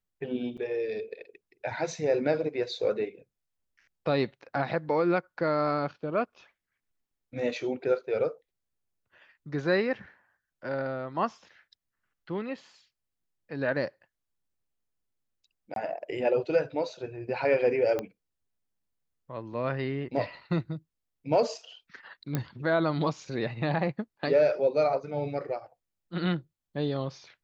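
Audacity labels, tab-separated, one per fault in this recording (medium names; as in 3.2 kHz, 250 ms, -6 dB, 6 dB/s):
0.570000	0.580000	dropout 6.8 ms
15.740000	15.760000	dropout 22 ms
17.990000	17.990000	pop -18 dBFS
22.350000	22.350000	pop -15 dBFS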